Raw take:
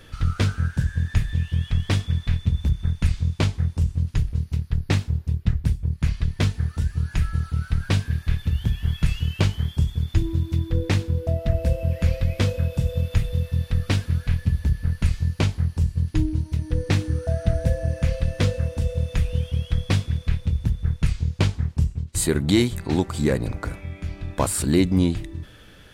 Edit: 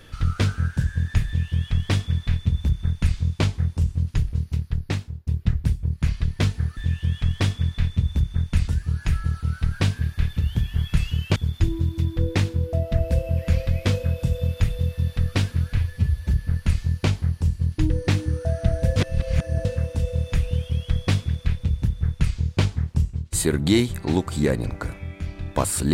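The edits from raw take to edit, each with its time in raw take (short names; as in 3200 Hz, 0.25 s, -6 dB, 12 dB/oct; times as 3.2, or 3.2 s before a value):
1.26–3.17 copy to 6.77
4.61–5.27 fade out, to -16.5 dB
9.45–9.9 cut
14.31–14.67 stretch 1.5×
16.26–16.72 cut
17.78–18.47 reverse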